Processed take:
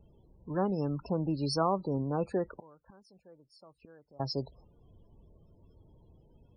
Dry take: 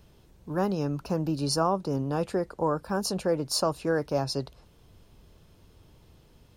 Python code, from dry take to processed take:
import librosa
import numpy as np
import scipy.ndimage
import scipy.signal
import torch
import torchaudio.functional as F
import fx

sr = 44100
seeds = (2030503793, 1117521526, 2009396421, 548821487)

y = fx.gate_flip(x, sr, shuts_db=-30.0, range_db=-27, at=(2.58, 4.2))
y = fx.spec_topn(y, sr, count=32)
y = y * librosa.db_to_amplitude(-3.0)